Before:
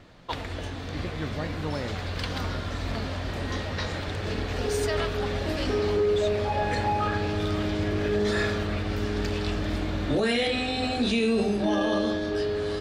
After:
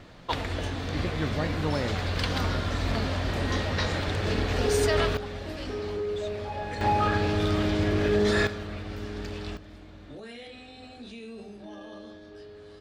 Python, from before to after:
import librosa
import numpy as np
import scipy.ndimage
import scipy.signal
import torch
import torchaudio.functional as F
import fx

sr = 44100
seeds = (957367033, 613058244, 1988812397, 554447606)

y = fx.gain(x, sr, db=fx.steps((0.0, 3.0), (5.17, -7.5), (6.81, 2.0), (8.47, -7.5), (9.57, -18.5)))